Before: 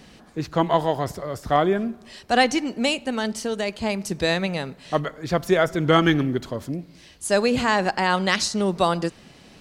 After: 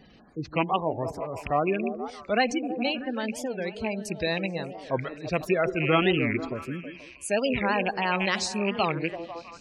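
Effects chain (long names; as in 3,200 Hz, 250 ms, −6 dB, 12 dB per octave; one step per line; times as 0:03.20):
loose part that buzzes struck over −26 dBFS, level −11 dBFS
gate on every frequency bin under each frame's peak −20 dB strong
on a send: echo through a band-pass that steps 160 ms, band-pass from 310 Hz, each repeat 0.7 octaves, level −6 dB
on the sum: wow of a warped record 45 rpm, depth 250 cents
level −5.5 dB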